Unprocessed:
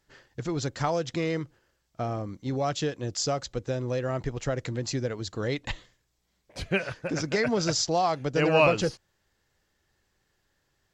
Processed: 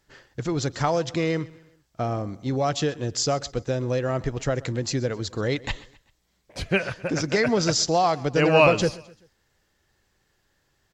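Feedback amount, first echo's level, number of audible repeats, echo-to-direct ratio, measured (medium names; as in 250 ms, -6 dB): 44%, -21.0 dB, 2, -20.0 dB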